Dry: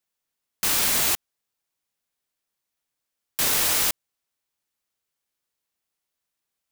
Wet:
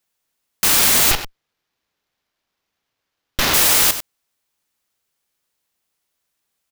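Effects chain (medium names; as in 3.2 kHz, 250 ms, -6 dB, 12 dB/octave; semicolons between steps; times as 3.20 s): on a send: delay 96 ms -11.5 dB; 1.11–3.54 s: on the sum: sliding maximum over 5 samples; trim +7.5 dB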